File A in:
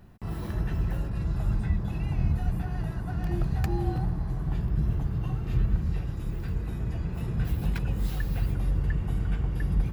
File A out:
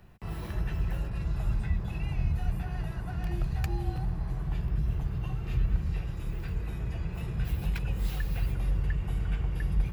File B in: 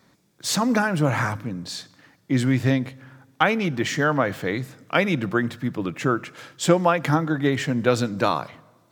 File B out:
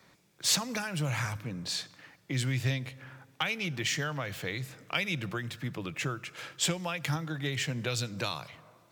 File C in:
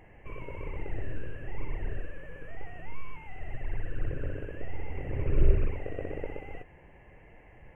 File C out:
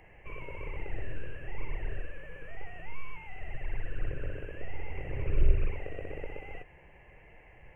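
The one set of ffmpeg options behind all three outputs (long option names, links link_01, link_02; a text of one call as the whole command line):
ffmpeg -i in.wav -filter_complex "[0:a]equalizer=frequency=100:width_type=o:width=0.67:gain=-3,equalizer=frequency=250:width_type=o:width=0.67:gain=-7,equalizer=frequency=2500:width_type=o:width=0.67:gain=5,acrossover=split=130|3000[link_01][link_02][link_03];[link_02]acompressor=threshold=-36dB:ratio=4[link_04];[link_01][link_04][link_03]amix=inputs=3:normalize=0,volume=-1dB" out.wav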